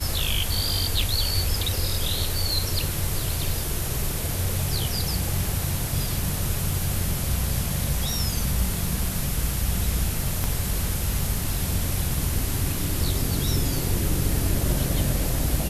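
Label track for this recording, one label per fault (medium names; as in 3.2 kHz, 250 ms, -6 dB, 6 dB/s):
10.440000	10.440000	pop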